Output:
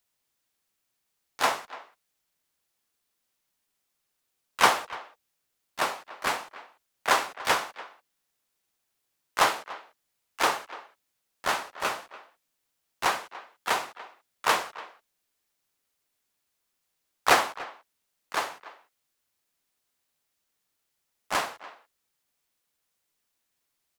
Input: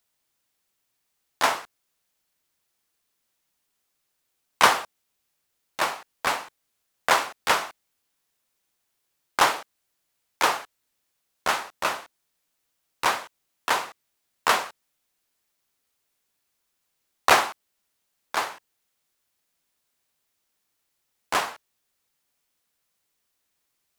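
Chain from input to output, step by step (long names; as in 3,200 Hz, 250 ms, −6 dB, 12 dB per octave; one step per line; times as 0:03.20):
pitch-shifted copies added −5 semitones −8 dB, +4 semitones −12 dB
far-end echo of a speakerphone 290 ms, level −17 dB
level −3.5 dB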